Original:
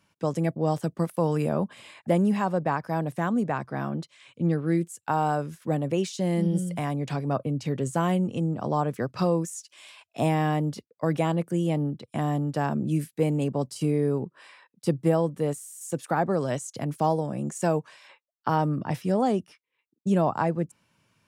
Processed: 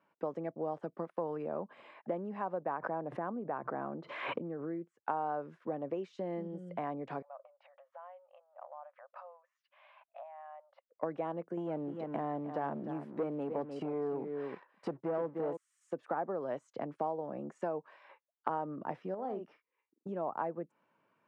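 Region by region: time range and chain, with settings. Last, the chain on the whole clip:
0:02.77–0:05.06: low-pass filter 1,600 Hz 6 dB per octave + background raised ahead of every attack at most 45 dB per second
0:07.22–0:10.92: downward compressor 16 to 1, threshold −38 dBFS + linear-phase brick-wall band-pass 520–10,000 Hz + high-frequency loss of the air 310 metres
0:11.57–0:15.57: single-tap delay 302 ms −11.5 dB + leveller curve on the samples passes 2
0:19.14–0:20.09: double-tracking delay 46 ms −9 dB + downward compressor 5 to 1, threshold −26 dBFS
whole clip: low-pass filter 1,300 Hz 12 dB per octave; downward compressor, threshold −30 dBFS; high-pass filter 360 Hz 12 dB per octave

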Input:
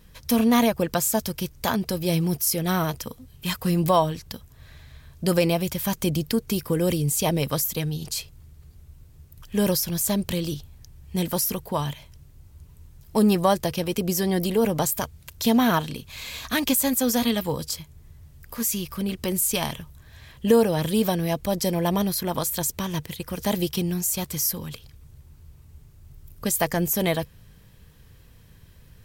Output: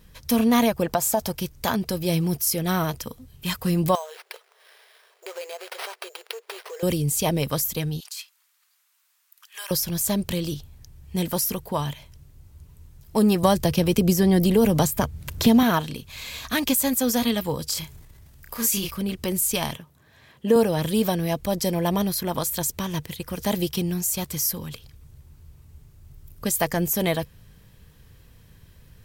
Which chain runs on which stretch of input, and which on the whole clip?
0:00.85–0:01.35: parametric band 760 Hz +12.5 dB 0.89 octaves + downward compressor 5 to 1, threshold −17 dBFS
0:03.95–0:06.83: downward compressor 10 to 1, threshold −27 dBFS + sample-rate reduction 7,100 Hz + linear-phase brick-wall high-pass 370 Hz
0:08.00–0:09.71: de-essing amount 55% + high-pass filter 1,100 Hz 24 dB per octave
0:13.43–0:15.63: low-shelf EQ 250 Hz +9 dB + multiband upward and downward compressor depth 70%
0:17.68–0:18.91: low-shelf EQ 420 Hz −6.5 dB + double-tracking delay 31 ms −3.5 dB + transient designer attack +4 dB, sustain +8 dB
0:19.77–0:20.56: high-pass filter 190 Hz + high-shelf EQ 2,100 Hz −7.5 dB
whole clip: no processing

